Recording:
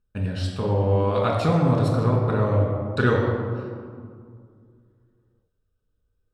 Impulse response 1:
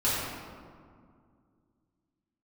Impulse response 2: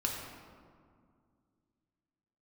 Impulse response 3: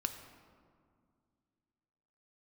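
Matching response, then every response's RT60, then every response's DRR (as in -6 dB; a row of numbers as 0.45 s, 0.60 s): 2; 2.1 s, 2.1 s, 2.1 s; -10.5 dB, -1.0 dB, 6.5 dB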